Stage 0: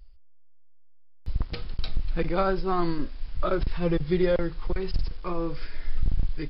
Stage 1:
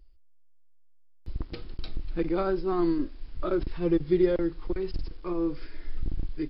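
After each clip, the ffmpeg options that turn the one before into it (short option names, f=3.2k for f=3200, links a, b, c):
-af "equalizer=f=320:t=o:w=0.68:g=12,volume=-6.5dB"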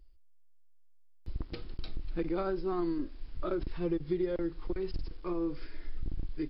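-af "acompressor=threshold=-26dB:ratio=4,volume=-2.5dB"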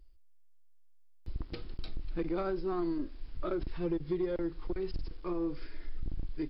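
-af "asoftclip=type=tanh:threshold=-22.5dB"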